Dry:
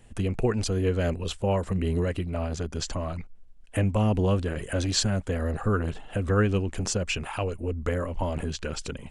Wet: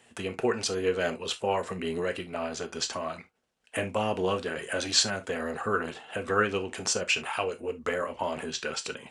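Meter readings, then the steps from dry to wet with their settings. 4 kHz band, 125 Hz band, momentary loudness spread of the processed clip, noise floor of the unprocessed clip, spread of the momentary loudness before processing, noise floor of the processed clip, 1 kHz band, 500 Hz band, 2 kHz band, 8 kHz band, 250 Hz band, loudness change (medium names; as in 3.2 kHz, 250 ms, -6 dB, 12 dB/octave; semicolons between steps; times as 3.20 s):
+3.5 dB, -15.5 dB, 8 LU, -47 dBFS, 8 LU, -62 dBFS, +2.5 dB, -0.5 dB, +4.5 dB, +2.0 dB, -7.0 dB, -2.0 dB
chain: frequency weighting A; gated-style reverb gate 90 ms falling, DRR 7 dB; trim +2 dB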